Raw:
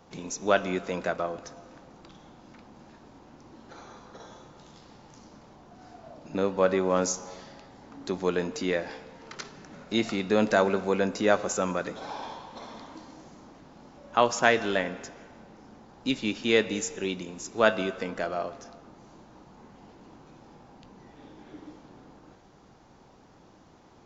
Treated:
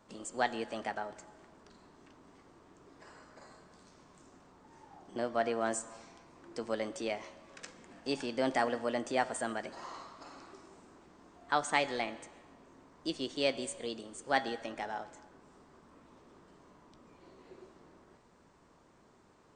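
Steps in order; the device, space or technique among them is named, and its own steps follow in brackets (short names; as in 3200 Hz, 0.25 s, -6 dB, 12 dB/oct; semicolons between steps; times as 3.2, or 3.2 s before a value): nightcore (varispeed +23%); gain -8 dB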